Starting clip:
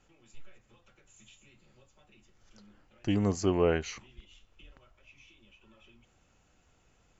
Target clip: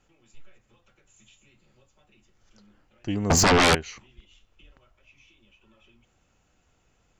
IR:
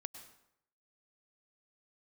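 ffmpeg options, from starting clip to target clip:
-filter_complex "[0:a]asettb=1/sr,asplit=3[a][b][c];[a]atrim=end=3.304[d];[b]atrim=start=3.3:end=3.75,asetpts=PTS-STARTPTS,afade=t=in:d=0.004:c=qsin,afade=t=out:st=0.446:d=0.004:c=qsin,aeval=exprs='0.188*sin(PI/2*7.94*val(0)/0.188)':c=same[e];[c]atrim=start=3.746[f];[d][e]acrossfade=d=0.004:c1=hsin:c2=qsin[g];[g][f]acrossfade=d=0.004:c1=qsin:c2=hsin"

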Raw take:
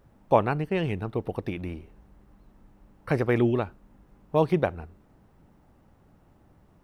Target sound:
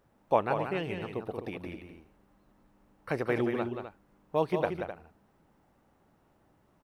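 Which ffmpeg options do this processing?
-af "lowshelf=f=180:g=-11.5,aecho=1:1:180.8|256.6:0.447|0.282,volume=-4dB"

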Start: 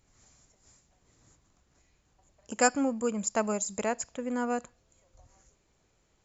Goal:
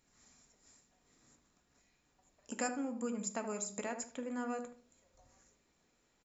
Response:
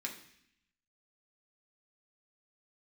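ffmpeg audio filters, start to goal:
-filter_complex "[0:a]acompressor=threshold=-35dB:ratio=2.5,asplit=2[a][b];[b]adelay=76,lowpass=f=1.1k:p=1,volume=-7.5dB,asplit=2[c][d];[d]adelay=76,lowpass=f=1.1k:p=1,volume=0.34,asplit=2[e][f];[f]adelay=76,lowpass=f=1.1k:p=1,volume=0.34,asplit=2[g][h];[h]adelay=76,lowpass=f=1.1k:p=1,volume=0.34[i];[a][c][e][g][i]amix=inputs=5:normalize=0,asplit=2[j][k];[1:a]atrim=start_sample=2205,atrim=end_sample=4410[l];[k][l]afir=irnorm=-1:irlink=0,volume=-0.5dB[m];[j][m]amix=inputs=2:normalize=0,volume=-7.5dB"

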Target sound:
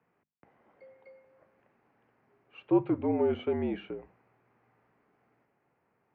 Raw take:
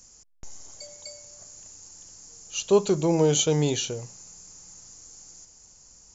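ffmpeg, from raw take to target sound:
-af "highpass=f=200:t=q:w=0.5412,highpass=f=200:t=q:w=1.307,lowpass=f=2.3k:t=q:w=0.5176,lowpass=f=2.3k:t=q:w=0.7071,lowpass=f=2.3k:t=q:w=1.932,afreqshift=-59,bandreject=f=50:t=h:w=6,bandreject=f=100:t=h:w=6,bandreject=f=150:t=h:w=6,bandreject=f=200:t=h:w=6,bandreject=f=250:t=h:w=6,volume=-5dB"

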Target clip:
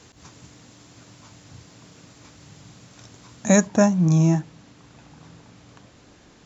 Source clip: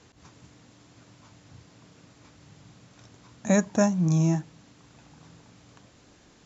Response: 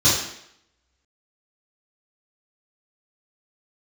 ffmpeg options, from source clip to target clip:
-af "asetnsamples=n=441:p=0,asendcmd='3.67 highshelf g -3.5',highshelf=f=5.2k:g=7,volume=5dB"

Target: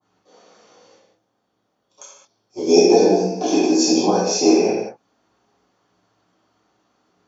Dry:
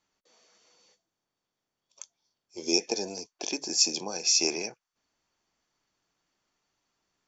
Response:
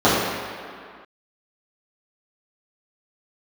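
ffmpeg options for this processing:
-filter_complex "[0:a]asettb=1/sr,asplit=3[a][b][c];[a]atrim=end=2.914[d];[b]atrim=start=2.91:end=4.19,asetpts=PTS-STARTPTS,afade=t=in:d=0.004:c=qsin,afade=t=out:st=1.276:d=0.004:c=qsin,asplit=2[e][f];[f]adelay=16,volume=-3.5dB[g];[e][g]amix=inputs=2:normalize=0,atrim=end_sample=56448[h];[c]atrim=start=4.186[i];[d][h]acrossfade=d=0.004:c1=hsin:c2=qsin[j];[j][i]acrossfade=d=0.004:c1=qsin:c2=hsin[k];[1:a]atrim=start_sample=2205,afade=t=out:st=0.28:d=0.01,atrim=end_sample=12789[l];[k][l]afir=irnorm=-1:irlink=0,adynamicequalizer=threshold=0.0794:dfrequency=1700:dqfactor=0.7:tfrequency=1700:tqfactor=0.7:attack=5:release=100:ratio=0.375:range=3:mode=cutabove:tftype=highshelf,volume=-10.5dB"

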